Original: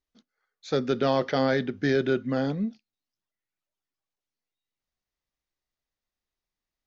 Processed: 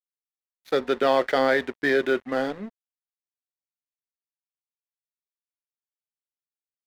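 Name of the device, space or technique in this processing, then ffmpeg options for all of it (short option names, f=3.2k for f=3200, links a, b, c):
pocket radio on a weak battery: -af "highpass=380,lowpass=3.7k,aeval=exprs='sgn(val(0))*max(abs(val(0))-0.00562,0)':c=same,equalizer=f=1.9k:t=o:w=0.28:g=5,volume=5.5dB"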